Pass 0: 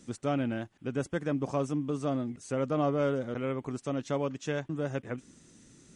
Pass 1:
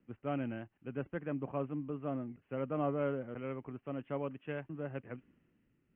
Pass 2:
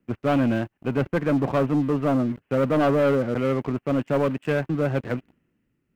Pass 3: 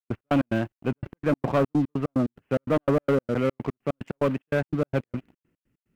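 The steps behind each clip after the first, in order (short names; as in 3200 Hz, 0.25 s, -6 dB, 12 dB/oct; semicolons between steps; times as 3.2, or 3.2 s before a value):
steep low-pass 3000 Hz 96 dB/oct; three-band expander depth 40%; gain -7 dB
sample leveller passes 3; gain +8 dB
step gate ".x.x.xx.x" 146 bpm -60 dB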